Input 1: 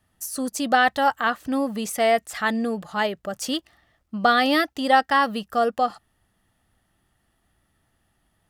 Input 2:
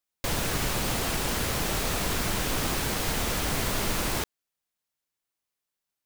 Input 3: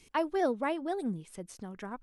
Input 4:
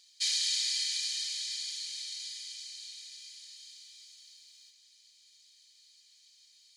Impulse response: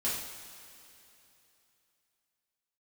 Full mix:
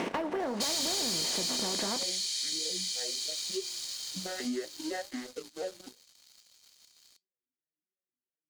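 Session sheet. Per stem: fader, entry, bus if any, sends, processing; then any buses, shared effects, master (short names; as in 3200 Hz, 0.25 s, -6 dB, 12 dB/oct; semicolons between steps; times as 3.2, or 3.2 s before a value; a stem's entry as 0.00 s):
-8.5 dB, 0.00 s, bus A, no send, arpeggiated vocoder major triad, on B2, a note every 0.244 s; notches 60/120/180/240/300/360/420/480/540 Hz; vowel sweep e-i 3 Hz
off
+2.5 dB, 0.00 s, bus A, no send, per-bin compression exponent 0.4
+1.5 dB, 0.40 s, no bus, no send, high shelf 4700 Hz +9 dB
bus A: 0.0 dB, BPF 130–5100 Hz; compressor, threshold -27 dBFS, peak gain reduction 8 dB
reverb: off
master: flange 1.5 Hz, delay 9 ms, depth 5.1 ms, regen -65%; sample leveller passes 3; compressor 5:1, threshold -31 dBFS, peak gain reduction 10.5 dB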